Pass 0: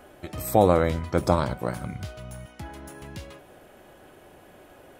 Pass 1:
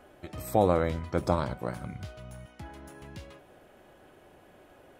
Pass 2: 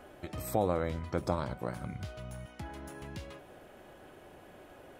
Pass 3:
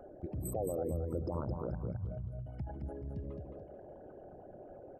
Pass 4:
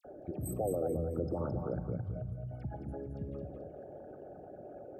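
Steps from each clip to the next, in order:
high-shelf EQ 7,400 Hz −6 dB; level −5 dB
downward compressor 1.5 to 1, threshold −43 dBFS, peak gain reduction 9 dB; level +2.5 dB
spectral envelope exaggerated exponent 3; brickwall limiter −28.5 dBFS, peak gain reduction 11.5 dB; repeating echo 217 ms, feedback 33%, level −5 dB; level +1 dB
notch comb filter 1,000 Hz; all-pass dispersion lows, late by 49 ms, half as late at 2,300 Hz; on a send at −14.5 dB: convolution reverb RT60 1.5 s, pre-delay 7 ms; on the sum: level +3 dB

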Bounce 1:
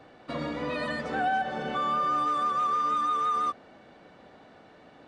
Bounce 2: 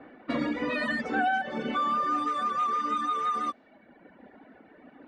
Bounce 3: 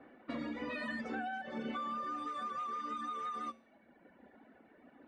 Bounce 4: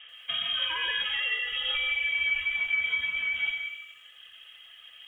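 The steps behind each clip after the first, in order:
reverb reduction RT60 1.7 s; graphic EQ with 10 bands 125 Hz −8 dB, 250 Hz +11 dB, 2,000 Hz +7 dB; low-pass that shuts in the quiet parts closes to 1,600 Hz, open at −28.5 dBFS
downward compressor, threshold −28 dBFS, peak gain reduction 6 dB; tuned comb filter 76 Hz, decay 0.51 s, harmonics odd, mix 60%; level −1.5 dB
dense smooth reverb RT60 0.67 s, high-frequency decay 0.3×, pre-delay 115 ms, DRR 3 dB; voice inversion scrambler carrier 3,500 Hz; feedback echo at a low word length 86 ms, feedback 55%, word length 11 bits, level −12 dB; level +8.5 dB

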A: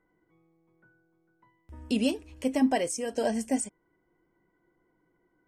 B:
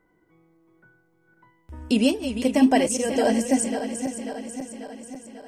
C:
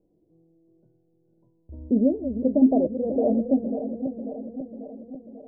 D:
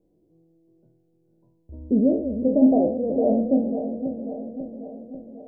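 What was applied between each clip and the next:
feedback delay that plays each chunk backwards 271 ms, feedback 75%, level −9 dB; level +6.5 dB
elliptic low-pass filter 630 Hz, stop band 80 dB
peak hold with a decay on every bin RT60 0.57 s

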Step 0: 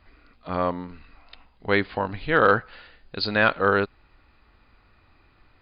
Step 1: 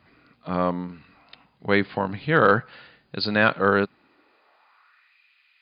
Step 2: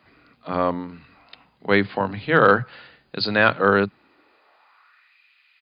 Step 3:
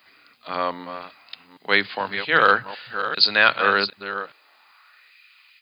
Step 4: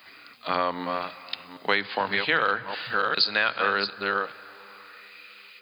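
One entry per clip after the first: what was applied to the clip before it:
high-pass filter sweep 140 Hz → 2,500 Hz, 0:03.79–0:05.19
multiband delay without the direct sound highs, lows 30 ms, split 170 Hz; level +2.5 dB
delay that plays each chunk backwards 393 ms, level −10 dB; spectral tilt +4.5 dB per octave; level −1 dB
downward compressor 6 to 1, threshold −26 dBFS, peak gain reduction 15 dB; convolution reverb RT60 4.2 s, pre-delay 43 ms, DRR 18 dB; level +5.5 dB

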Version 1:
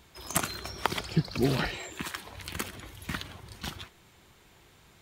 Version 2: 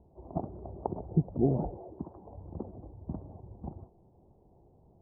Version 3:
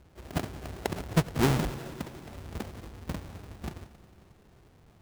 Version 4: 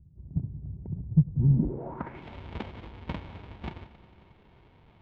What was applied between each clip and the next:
Butterworth low-pass 820 Hz 48 dB per octave
each half-wave held at its own peak; echo machine with several playback heads 90 ms, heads all three, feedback 67%, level −23 dB; level −1.5 dB
low-pass filter sweep 140 Hz → 3,300 Hz, 0:01.48–0:02.23; high-shelf EQ 3,500 Hz −10 dB; hollow resonant body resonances 930/2,200 Hz, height 9 dB, ringing for 35 ms

